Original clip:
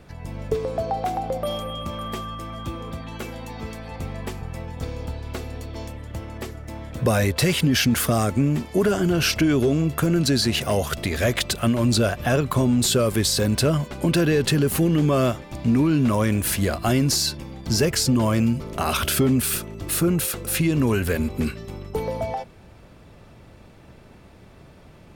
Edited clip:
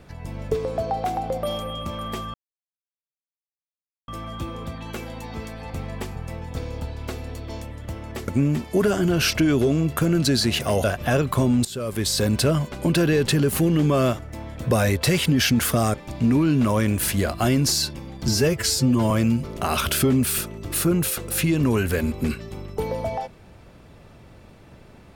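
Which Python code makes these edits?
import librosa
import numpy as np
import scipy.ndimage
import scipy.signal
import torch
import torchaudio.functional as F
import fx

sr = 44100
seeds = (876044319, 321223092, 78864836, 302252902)

y = fx.edit(x, sr, fx.insert_silence(at_s=2.34, length_s=1.74),
    fx.move(start_s=6.54, length_s=1.75, to_s=15.38),
    fx.cut(start_s=10.85, length_s=1.18),
    fx.fade_in_from(start_s=12.84, length_s=0.57, floor_db=-20.0),
    fx.stretch_span(start_s=17.72, length_s=0.55, factor=1.5), tone=tone)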